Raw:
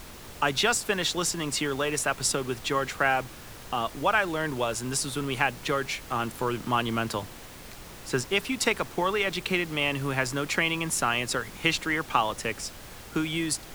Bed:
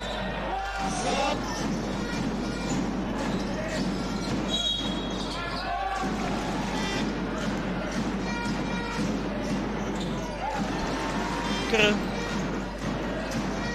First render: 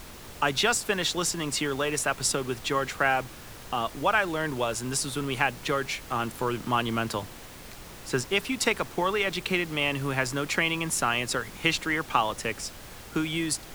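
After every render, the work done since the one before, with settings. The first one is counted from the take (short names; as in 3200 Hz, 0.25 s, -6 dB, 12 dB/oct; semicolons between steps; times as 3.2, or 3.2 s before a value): nothing audible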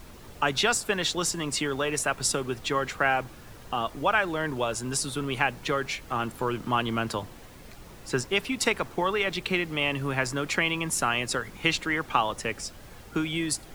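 denoiser 7 dB, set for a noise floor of -45 dBFS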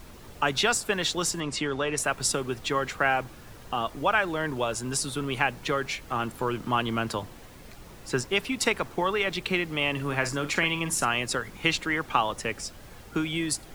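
1.4–1.98 air absorption 60 m; 9.92–11.07 doubler 48 ms -11 dB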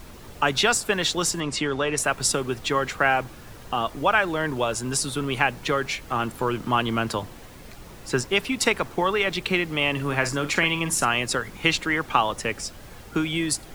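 gain +3.5 dB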